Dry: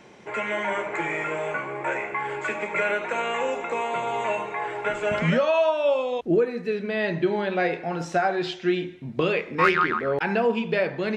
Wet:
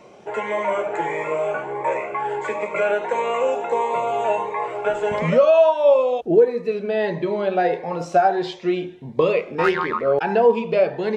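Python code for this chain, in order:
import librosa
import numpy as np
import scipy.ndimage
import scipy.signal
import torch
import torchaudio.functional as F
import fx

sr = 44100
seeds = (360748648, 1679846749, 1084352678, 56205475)

y = fx.band_shelf(x, sr, hz=680.0, db=9.0, octaves=1.7)
y = fx.notch_cascade(y, sr, direction='rising', hz=1.5)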